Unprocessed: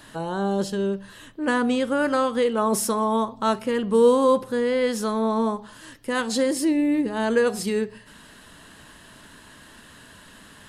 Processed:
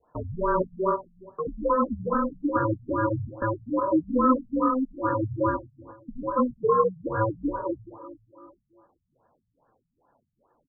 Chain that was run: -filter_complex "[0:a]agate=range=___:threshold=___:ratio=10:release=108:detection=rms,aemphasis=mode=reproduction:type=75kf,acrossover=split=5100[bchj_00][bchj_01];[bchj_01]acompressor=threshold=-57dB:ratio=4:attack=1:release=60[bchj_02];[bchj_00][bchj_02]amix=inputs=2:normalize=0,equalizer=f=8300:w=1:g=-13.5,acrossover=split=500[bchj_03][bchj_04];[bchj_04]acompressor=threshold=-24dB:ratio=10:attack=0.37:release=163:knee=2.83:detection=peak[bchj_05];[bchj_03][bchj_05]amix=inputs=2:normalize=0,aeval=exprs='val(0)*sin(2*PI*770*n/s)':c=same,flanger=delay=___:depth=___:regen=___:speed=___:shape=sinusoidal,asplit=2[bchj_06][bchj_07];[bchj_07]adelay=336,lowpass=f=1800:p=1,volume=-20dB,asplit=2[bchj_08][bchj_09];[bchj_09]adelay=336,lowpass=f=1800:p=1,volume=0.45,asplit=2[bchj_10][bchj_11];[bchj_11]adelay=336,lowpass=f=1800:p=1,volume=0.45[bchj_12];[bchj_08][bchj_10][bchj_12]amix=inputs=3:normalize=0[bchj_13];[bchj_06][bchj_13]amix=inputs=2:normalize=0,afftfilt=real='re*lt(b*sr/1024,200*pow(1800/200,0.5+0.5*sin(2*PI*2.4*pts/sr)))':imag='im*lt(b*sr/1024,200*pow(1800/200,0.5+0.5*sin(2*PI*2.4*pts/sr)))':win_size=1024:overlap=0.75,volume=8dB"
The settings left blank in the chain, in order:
-17dB, -40dB, 2.3, 7, -20, 2